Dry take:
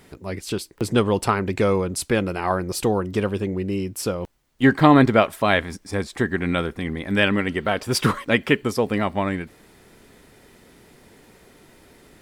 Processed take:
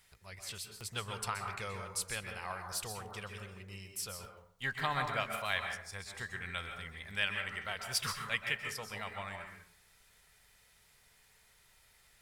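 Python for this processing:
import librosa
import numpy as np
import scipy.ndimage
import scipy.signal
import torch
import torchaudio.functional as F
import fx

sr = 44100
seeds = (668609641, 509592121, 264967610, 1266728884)

y = fx.tone_stack(x, sr, knobs='10-0-10')
y = fx.rev_plate(y, sr, seeds[0], rt60_s=0.6, hf_ratio=0.45, predelay_ms=115, drr_db=4.0)
y = y * librosa.db_to_amplitude(-8.0)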